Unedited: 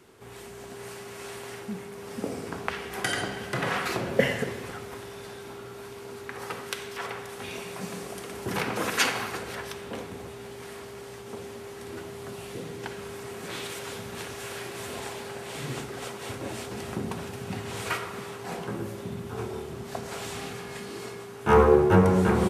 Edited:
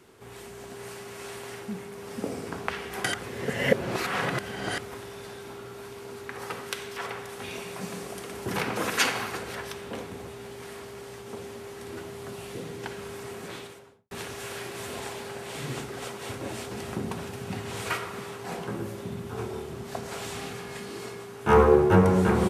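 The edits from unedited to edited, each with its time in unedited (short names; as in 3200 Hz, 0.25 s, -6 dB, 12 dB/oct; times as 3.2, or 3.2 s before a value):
3.14–4.78 reverse
13.28–14.11 studio fade out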